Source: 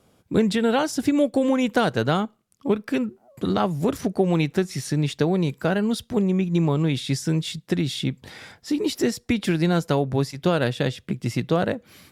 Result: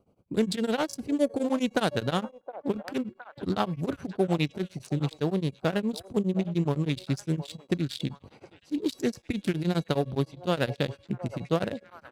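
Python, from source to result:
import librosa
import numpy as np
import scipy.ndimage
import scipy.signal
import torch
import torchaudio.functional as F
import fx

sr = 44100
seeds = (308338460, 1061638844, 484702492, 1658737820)

p1 = fx.wiener(x, sr, points=25)
p2 = fx.high_shelf(p1, sr, hz=3400.0, db=10.0)
p3 = fx.comb_fb(p2, sr, f0_hz=560.0, decay_s=0.49, harmonics='all', damping=0.0, mix_pct=50)
p4 = p3 + fx.echo_stepped(p3, sr, ms=715, hz=680.0, octaves=0.7, feedback_pct=70, wet_db=-11, dry=0)
p5 = p4 * np.abs(np.cos(np.pi * 9.7 * np.arange(len(p4)) / sr))
y = p5 * 10.0 ** (3.0 / 20.0)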